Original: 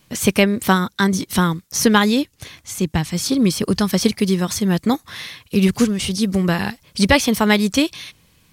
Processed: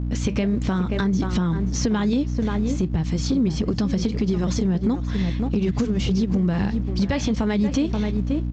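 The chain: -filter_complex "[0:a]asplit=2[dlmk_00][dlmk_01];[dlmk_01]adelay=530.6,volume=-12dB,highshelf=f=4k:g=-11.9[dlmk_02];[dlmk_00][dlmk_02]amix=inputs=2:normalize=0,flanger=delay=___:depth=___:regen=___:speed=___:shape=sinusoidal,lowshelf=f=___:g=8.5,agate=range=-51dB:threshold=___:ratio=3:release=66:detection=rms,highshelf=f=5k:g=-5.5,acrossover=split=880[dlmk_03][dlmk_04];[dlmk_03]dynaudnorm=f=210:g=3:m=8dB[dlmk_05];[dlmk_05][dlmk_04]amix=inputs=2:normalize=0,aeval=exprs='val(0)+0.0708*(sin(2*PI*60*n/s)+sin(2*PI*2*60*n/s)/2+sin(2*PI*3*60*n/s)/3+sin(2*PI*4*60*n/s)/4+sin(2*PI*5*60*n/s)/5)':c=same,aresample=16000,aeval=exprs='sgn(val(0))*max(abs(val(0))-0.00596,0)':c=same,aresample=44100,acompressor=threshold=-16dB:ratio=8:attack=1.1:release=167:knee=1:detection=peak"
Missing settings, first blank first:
2.5, 5, -71, 1.6, 360, -44dB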